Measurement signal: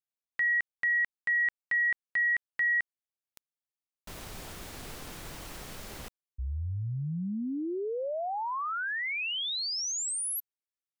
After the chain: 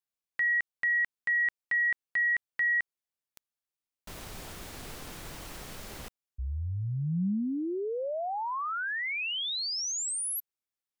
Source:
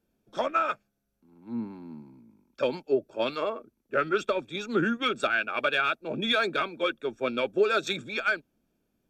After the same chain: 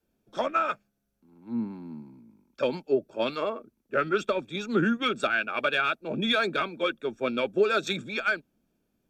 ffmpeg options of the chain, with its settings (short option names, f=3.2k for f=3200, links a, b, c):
-af "adynamicequalizer=threshold=0.00501:dfrequency=190:dqfactor=2:tfrequency=190:tqfactor=2:attack=5:release=100:ratio=0.375:range=2.5:mode=boostabove:tftype=bell"